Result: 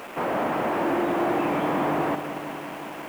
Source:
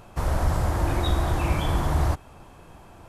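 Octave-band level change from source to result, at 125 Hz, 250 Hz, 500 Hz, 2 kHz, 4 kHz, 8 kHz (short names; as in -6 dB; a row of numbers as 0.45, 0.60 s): -14.0, +6.0, +6.5, +4.5, -4.0, -7.5 dB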